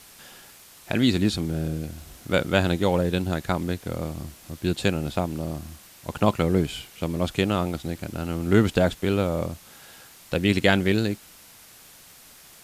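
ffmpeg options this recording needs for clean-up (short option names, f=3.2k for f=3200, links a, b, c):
-af "adeclick=t=4,afwtdn=0.004"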